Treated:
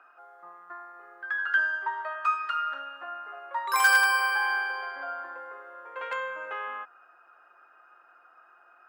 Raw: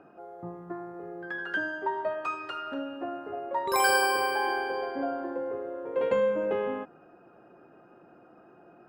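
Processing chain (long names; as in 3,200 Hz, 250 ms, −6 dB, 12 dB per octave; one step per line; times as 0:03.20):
wave folding −16 dBFS
high-pass with resonance 1,300 Hz, resonance Q 2.6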